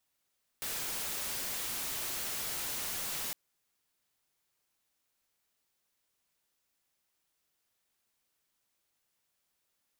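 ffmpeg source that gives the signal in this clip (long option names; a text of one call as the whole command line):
ffmpeg -f lavfi -i "anoisesrc=color=white:amplitude=0.0245:duration=2.71:sample_rate=44100:seed=1" out.wav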